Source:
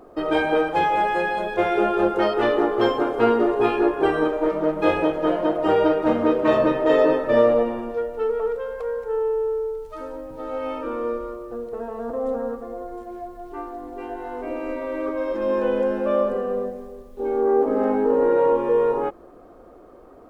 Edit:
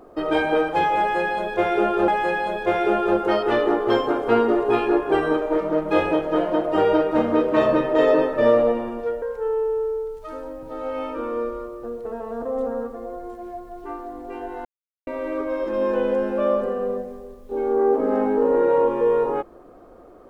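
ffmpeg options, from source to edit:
-filter_complex "[0:a]asplit=5[s0][s1][s2][s3][s4];[s0]atrim=end=2.082[s5];[s1]atrim=start=0.988:end=8.132[s6];[s2]atrim=start=8.898:end=14.33,asetpts=PTS-STARTPTS,afade=t=out:st=5.428:d=0.004:c=hsin[s7];[s3]atrim=start=14.33:end=14.75,asetpts=PTS-STARTPTS,volume=0[s8];[s4]atrim=start=14.75,asetpts=PTS-STARTPTS,afade=t=in:d=0.004:c=hsin[s9];[s5][s6]acrossfade=d=0.004:c1=hsin:c2=hsin[s10];[s7][s8][s9]concat=n=3:v=0:a=1[s11];[s10][s11]acrossfade=d=0.004:c1=hsin:c2=hsin"

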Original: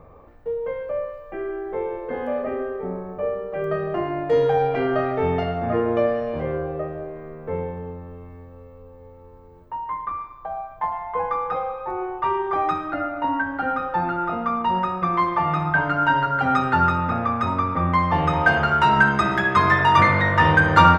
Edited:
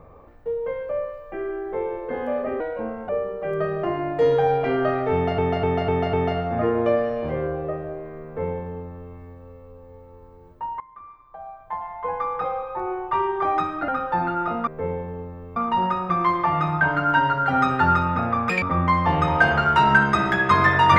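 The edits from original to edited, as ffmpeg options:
-filter_complex "[0:a]asplit=13[s0][s1][s2][s3][s4][s5][s6][s7][s8][s9][s10][s11][s12];[s0]atrim=end=2.604[s13];[s1]atrim=start=2.6:end=3.2,asetpts=PTS-STARTPTS,asetrate=53802,aresample=44100[s14];[s2]atrim=start=3.196:end=5.492[s15];[s3]atrim=start=5.238:end=5.492[s16];[s4]atrim=start=5.238:end=5.492[s17];[s5]atrim=start=5.238:end=5.492[s18];[s6]atrim=start=5.238:end=9.91,asetpts=PTS-STARTPTS,afade=t=out:st=4.668:d=0.004:c=hsin:silence=0.0891251[s19];[s7]atrim=start=9.91:end=12.992,asetpts=PTS-STARTPTS,afade=t=in:d=1.81:silence=0.0891251[s20];[s8]atrim=start=13.698:end=14.492[s21];[s9]atrim=start=7.358:end=8.252[s22];[s10]atrim=start=14.488:end=17.424[s23];[s11]atrim=start=17.42:end=17.68,asetpts=PTS-STARTPTS,asetrate=87318,aresample=44100[s24];[s12]atrim=start=17.676[s25];[s13][s14]acrossfade=d=0.004:c1=hsin:c2=hsin[s26];[s26][s15]acrossfade=d=0.004:c1=hsin:c2=hsin[s27];[s27][s16]acrossfade=d=0.004:c1=hsin:c2=hsin[s28];[s28][s17]acrossfade=d=0.004:c1=hsin:c2=hsin[s29];[s29][s18]acrossfade=d=0.004:c1=hsin:c2=hsin[s30];[s19][s20]concat=n=2:v=0:a=1[s31];[s30][s31]acrossfade=d=0.004:c1=hsin:c2=hsin[s32];[s32][s21]acrossfade=d=0.004:c1=hsin:c2=hsin[s33];[s33][s22]acrossfade=d=0.004:c1=hsin:c2=hsin[s34];[s34][s23]acrossfade=d=0.004:c1=hsin:c2=hsin[s35];[s35][s24]acrossfade=d=0.004:c1=hsin:c2=hsin[s36];[s36][s25]acrossfade=d=0.004:c1=hsin:c2=hsin"

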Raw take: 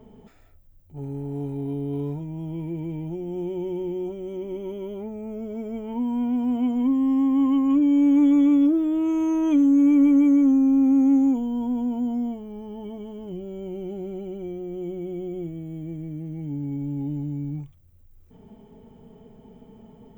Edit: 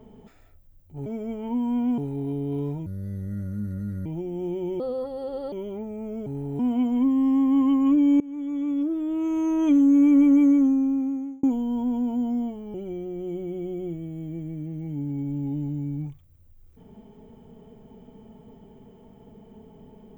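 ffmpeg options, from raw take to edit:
-filter_complex "[0:a]asplit=12[s0][s1][s2][s3][s4][s5][s6][s7][s8][s9][s10][s11];[s0]atrim=end=1.062[s12];[s1]atrim=start=5.508:end=6.432[s13];[s2]atrim=start=1.388:end=2.274[s14];[s3]atrim=start=2.27:end=3,asetpts=PTS-STARTPTS,asetrate=26901,aresample=44100,atrim=end_sample=52775,asetpts=PTS-STARTPTS[s15];[s4]atrim=start=2.996:end=3.744[s16];[s5]atrim=start=3.74:end=4.77,asetpts=PTS-STARTPTS,asetrate=62622,aresample=44100,atrim=end_sample=31988,asetpts=PTS-STARTPTS[s17];[s6]atrim=start=4.766:end=5.512[s18];[s7]atrim=start=1.058:end=1.392[s19];[s8]atrim=start=6.428:end=8.04,asetpts=PTS-STARTPTS,afade=t=out:st=1.608:d=0.004:c=hsin:silence=0.0630957[s20];[s9]atrim=start=8.04:end=11.27,asetpts=PTS-STARTPTS,afade=t=in:d=1.5:silence=0.0630957,afade=t=out:st=2.27:d=0.96[s21];[s10]atrim=start=11.27:end=12.582,asetpts=PTS-STARTPTS,afade=t=in:d=0.004:c=hsin[s22];[s11]atrim=start=14.278[s23];[s12][s13]acrossfade=d=0.004:c1=hsin:c2=hsin[s24];[s24][s14]acrossfade=d=0.004:c1=hsin:c2=hsin[s25];[s25][s15]acrossfade=d=0.004:c1=hsin:c2=hsin[s26];[s26][s16]acrossfade=d=0.004:c1=hsin:c2=hsin[s27];[s27][s17]acrossfade=d=0.004:c1=hsin:c2=hsin[s28];[s28][s18]acrossfade=d=0.004:c1=hsin:c2=hsin[s29];[s29][s19]acrossfade=d=0.004:c1=hsin:c2=hsin[s30];[s20][s21][s22]concat=n=3:v=0:a=1[s31];[s30][s31]acrossfade=d=0.004:c1=hsin:c2=hsin[s32];[s32][s23]acrossfade=d=0.004:c1=hsin:c2=hsin"

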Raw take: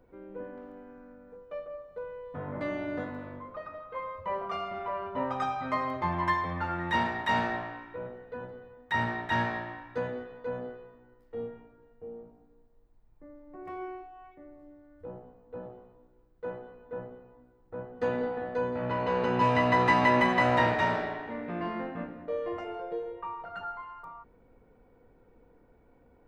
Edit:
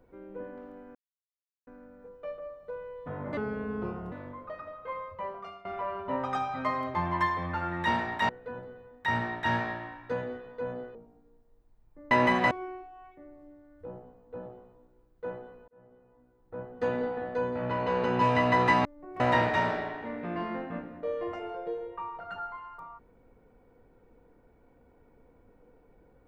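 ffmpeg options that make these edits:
-filter_complex "[0:a]asplit=12[s0][s1][s2][s3][s4][s5][s6][s7][s8][s9][s10][s11];[s0]atrim=end=0.95,asetpts=PTS-STARTPTS,afade=t=out:st=0.946:d=0.004:c=hsin,apad=pad_dur=0.72[s12];[s1]atrim=start=0.95:end=2.654,asetpts=PTS-STARTPTS,afade=t=in:d=0.004:c=hsin[s13];[s2]atrim=start=2.65:end=3.19,asetpts=PTS-STARTPTS,asetrate=31752,aresample=44100[s14];[s3]atrim=start=3.186:end=4.72,asetpts=PTS-STARTPTS,afade=t=out:st=0.854:d=0.68:silence=0.125893[s15];[s4]atrim=start=4.72:end=7.362,asetpts=PTS-STARTPTS,afade=t=in:d=0.004:c=hsin:silence=0.125893[s16];[s5]atrim=start=8.148:end=10.812[s17];[s6]atrim=start=12.198:end=13.362[s18];[s7]atrim=start=20.048:end=20.452[s19];[s8]atrim=start=13.708:end=16.88,asetpts=PTS-STARTPTS,afade=t=out:st=3.168:d=0.004:c=hsin[s20];[s9]atrim=start=16.88:end=20.052,asetpts=PTS-STARTPTS,afade=t=in:d=0.94[s21];[s10]atrim=start=13.358:end=13.712[s22];[s11]atrim=start=20.448[s23];[s12][s13]concat=n=2:v=0:a=1[s24];[s24][s14]acrossfade=d=0.004:c1=hsin:c2=hsin[s25];[s15][s16]concat=n=2:v=0:a=1[s26];[s25][s26]acrossfade=d=0.004:c1=hsin:c2=hsin[s27];[s27][s17]acrossfade=d=0.004:c1=hsin:c2=hsin[s28];[s28][s18]acrossfade=d=0.004:c1=hsin:c2=hsin[s29];[s29][s19]acrossfade=d=0.004:c1=hsin:c2=hsin[s30];[s20][s21]concat=n=2:v=0:a=1[s31];[s30][s31]acrossfade=d=0.004:c1=hsin:c2=hsin[s32];[s32][s22]acrossfade=d=0.004:c1=hsin:c2=hsin[s33];[s33][s23]acrossfade=d=0.004:c1=hsin:c2=hsin"

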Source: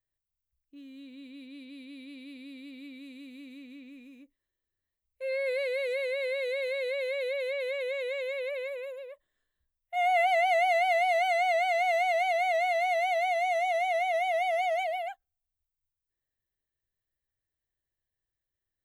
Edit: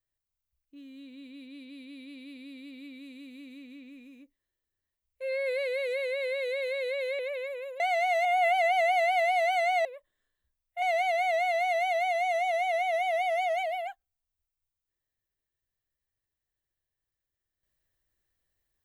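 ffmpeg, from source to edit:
-filter_complex "[0:a]asplit=6[s0][s1][s2][s3][s4][s5];[s0]atrim=end=7.192[s6];[s1]atrim=start=8.398:end=9.012[s7];[s2]atrim=start=11.578:end=12.032[s8];[s3]atrim=start=9.978:end=11.582[s9];[s4]atrim=start=9.008:end=9.982[s10];[s5]atrim=start=12.028[s11];[s6][s7]acrossfade=d=0.004:c1=hsin:c2=hsin[s12];[s12][s8]acrossfade=d=0.004:c1=hsin:c2=hsin[s13];[s13][s9]acrossfade=d=0.004:c1=hsin:c2=hsin[s14];[s14][s10]acrossfade=d=0.004:c1=hsin:c2=hsin[s15];[s15][s11]acrossfade=d=0.004:c1=hsin:c2=hsin"

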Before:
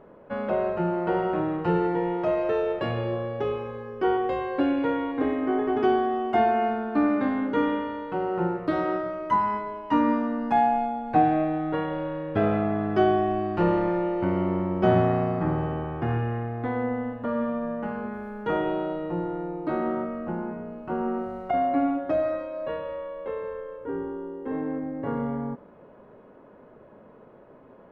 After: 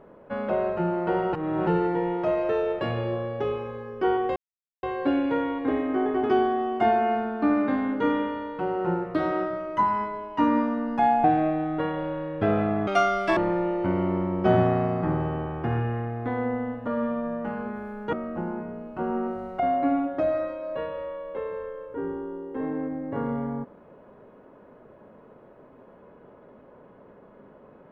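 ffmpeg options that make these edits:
-filter_complex "[0:a]asplit=8[s0][s1][s2][s3][s4][s5][s6][s7];[s0]atrim=end=1.332[s8];[s1]atrim=start=1.328:end=1.672,asetpts=PTS-STARTPTS,areverse[s9];[s2]atrim=start=1.668:end=4.36,asetpts=PTS-STARTPTS,afade=t=out:st=2.688:d=0.004:c=hsin,apad=pad_dur=0.47[s10];[s3]atrim=start=4.36:end=10.772,asetpts=PTS-STARTPTS,afade=t=in:d=0.004:c=hsin[s11];[s4]atrim=start=11.178:end=12.814[s12];[s5]atrim=start=12.81:end=13.75,asetpts=PTS-STARTPTS,asetrate=82908,aresample=44100[s13];[s6]atrim=start=13.746:end=18.512[s14];[s7]atrim=start=20.038[s15];[s8][s9]acrossfade=d=0.004:c1=hsin:c2=hsin[s16];[s10][s11]concat=n=2:v=0:a=1[s17];[s16][s17]acrossfade=d=0.004:c1=hsin:c2=hsin[s18];[s18][s12]acrossfade=d=0.004:c1=hsin:c2=hsin[s19];[s19][s13]acrossfade=d=0.004:c1=hsin:c2=hsin[s20];[s20][s14]acrossfade=d=0.004:c1=hsin:c2=hsin[s21];[s21][s15]acrossfade=d=0.004:c1=hsin:c2=hsin"

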